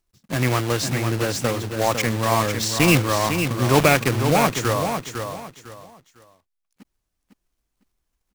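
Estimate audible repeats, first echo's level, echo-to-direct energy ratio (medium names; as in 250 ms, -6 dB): 3, -7.0 dB, -6.5 dB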